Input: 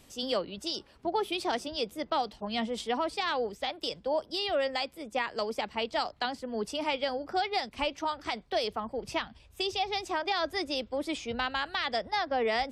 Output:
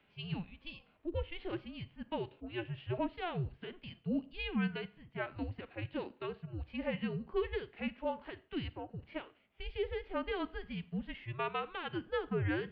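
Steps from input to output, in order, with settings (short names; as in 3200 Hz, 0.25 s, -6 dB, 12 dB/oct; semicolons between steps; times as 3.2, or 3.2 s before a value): harmonic-percussive split percussive -11 dB; Schroeder reverb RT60 0.42 s, combs from 31 ms, DRR 18 dB; mistuned SSB -350 Hz 430–3400 Hz; gain -3 dB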